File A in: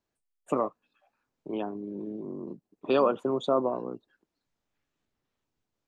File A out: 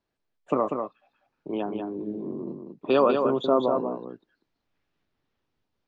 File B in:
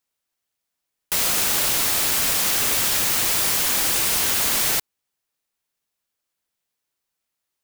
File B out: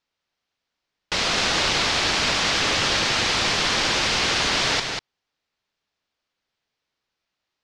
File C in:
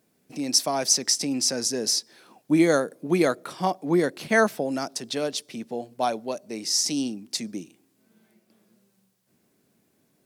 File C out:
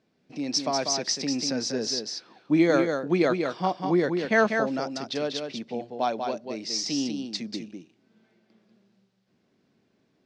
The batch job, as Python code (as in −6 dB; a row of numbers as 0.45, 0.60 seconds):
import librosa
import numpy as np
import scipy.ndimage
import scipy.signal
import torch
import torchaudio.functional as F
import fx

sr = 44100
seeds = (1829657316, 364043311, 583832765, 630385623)

p1 = scipy.signal.sosfilt(scipy.signal.butter(4, 5200.0, 'lowpass', fs=sr, output='sos'), x)
p2 = p1 + fx.echo_single(p1, sr, ms=193, db=-5.5, dry=0)
y = p2 * 10.0 ** (-9 / 20.0) / np.max(np.abs(p2))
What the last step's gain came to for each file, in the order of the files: +3.0, +4.0, −1.5 decibels